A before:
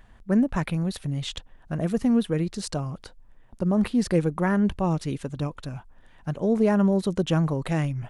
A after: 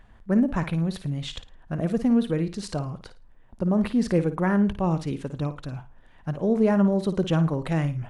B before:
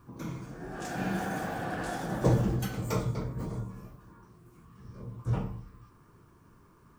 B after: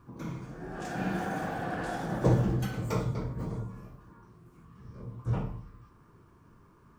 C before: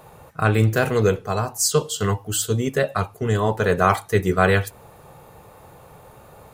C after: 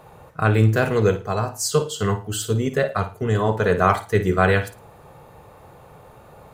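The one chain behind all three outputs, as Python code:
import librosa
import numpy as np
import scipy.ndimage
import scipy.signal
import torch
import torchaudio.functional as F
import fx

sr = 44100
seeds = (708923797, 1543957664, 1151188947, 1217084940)

y = fx.high_shelf(x, sr, hz=5400.0, db=-7.5)
y = fx.room_flutter(y, sr, wall_m=9.4, rt60_s=0.28)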